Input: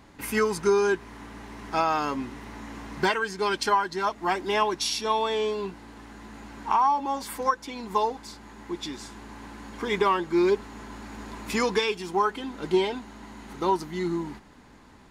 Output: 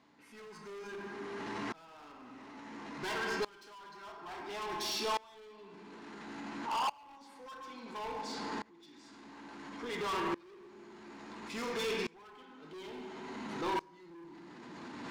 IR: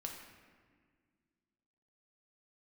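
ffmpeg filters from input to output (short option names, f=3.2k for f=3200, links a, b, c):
-filter_complex "[0:a]areverse,acompressor=mode=upward:threshold=-30dB:ratio=2.5,areverse,highpass=170,lowpass=5.1k,asplit=2[a][b];[b]asoftclip=type=tanh:threshold=-25.5dB,volume=-4.5dB[c];[a][c]amix=inputs=2:normalize=0,highshelf=f=4k:g=5.5[d];[1:a]atrim=start_sample=2205[e];[d][e]afir=irnorm=-1:irlink=0,asoftclip=type=hard:threshold=-26.5dB,alimiter=level_in=12.5dB:limit=-24dB:level=0:latency=1:release=27,volume=-12.5dB,aeval=exprs='val(0)*pow(10,-26*if(lt(mod(-0.58*n/s,1),2*abs(-0.58)/1000),1-mod(-0.58*n/s,1)/(2*abs(-0.58)/1000),(mod(-0.58*n/s,1)-2*abs(-0.58)/1000)/(1-2*abs(-0.58)/1000))/20)':c=same,volume=7dB"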